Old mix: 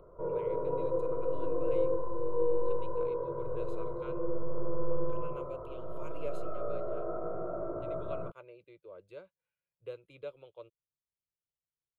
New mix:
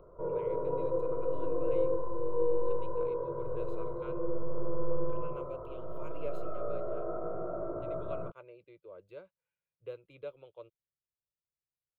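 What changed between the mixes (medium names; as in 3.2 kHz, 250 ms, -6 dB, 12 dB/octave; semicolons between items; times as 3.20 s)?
speech: remove low-pass 8.7 kHz 12 dB/octave; master: add peaking EQ 11 kHz -12.5 dB 1.5 oct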